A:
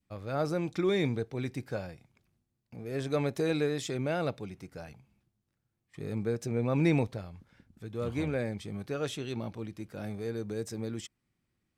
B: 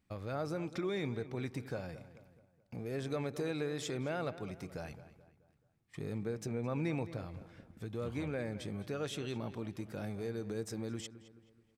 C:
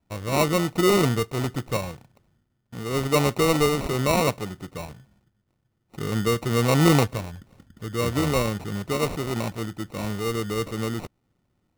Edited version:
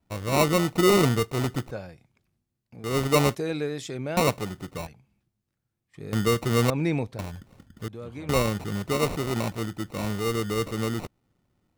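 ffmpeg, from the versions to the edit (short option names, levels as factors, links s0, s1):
-filter_complex "[0:a]asplit=4[s0][s1][s2][s3];[2:a]asplit=6[s4][s5][s6][s7][s8][s9];[s4]atrim=end=1.712[s10];[s0]atrim=start=1.708:end=2.842[s11];[s5]atrim=start=2.838:end=3.352[s12];[s1]atrim=start=3.348:end=4.172[s13];[s6]atrim=start=4.168:end=4.872[s14];[s2]atrim=start=4.868:end=6.132[s15];[s7]atrim=start=6.128:end=6.702[s16];[s3]atrim=start=6.698:end=7.192[s17];[s8]atrim=start=7.188:end=7.882[s18];[1:a]atrim=start=7.878:end=8.292[s19];[s9]atrim=start=8.288[s20];[s10][s11]acrossfade=d=0.004:c1=hsin:c2=hsin[s21];[s21][s12]acrossfade=d=0.004:c1=hsin:c2=hsin[s22];[s22][s13]acrossfade=d=0.004:c1=hsin:c2=hsin[s23];[s23][s14]acrossfade=d=0.004:c1=hsin:c2=hsin[s24];[s24][s15]acrossfade=d=0.004:c1=hsin:c2=hsin[s25];[s25][s16]acrossfade=d=0.004:c1=hsin:c2=hsin[s26];[s26][s17]acrossfade=d=0.004:c1=hsin:c2=hsin[s27];[s27][s18]acrossfade=d=0.004:c1=hsin:c2=hsin[s28];[s28][s19]acrossfade=d=0.004:c1=hsin:c2=hsin[s29];[s29][s20]acrossfade=d=0.004:c1=hsin:c2=hsin"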